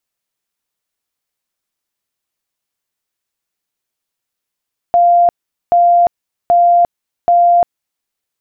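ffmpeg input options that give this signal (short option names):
-f lavfi -i "aevalsrc='0.501*sin(2*PI*696*mod(t,0.78))*lt(mod(t,0.78),243/696)':d=3.12:s=44100"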